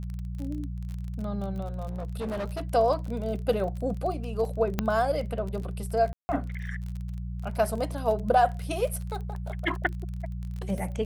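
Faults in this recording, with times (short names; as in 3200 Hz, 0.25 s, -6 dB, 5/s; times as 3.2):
crackle 36/s -34 dBFS
hum 60 Hz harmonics 3 -34 dBFS
1.88–2.63 clipped -28.5 dBFS
4.79 pop -11 dBFS
6.13–6.29 gap 0.16 s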